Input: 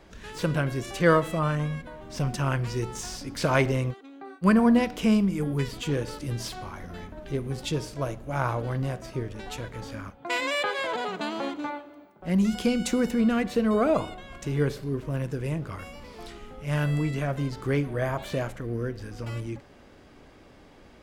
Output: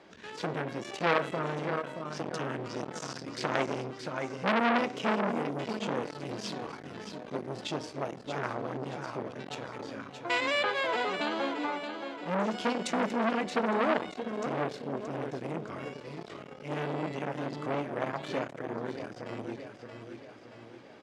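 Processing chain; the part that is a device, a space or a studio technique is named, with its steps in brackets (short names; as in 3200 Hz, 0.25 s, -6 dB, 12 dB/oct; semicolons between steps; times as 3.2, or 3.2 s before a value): feedback echo 0.625 s, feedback 47%, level -9 dB; public-address speaker with an overloaded transformer (core saturation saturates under 2100 Hz; BPF 210–5800 Hz)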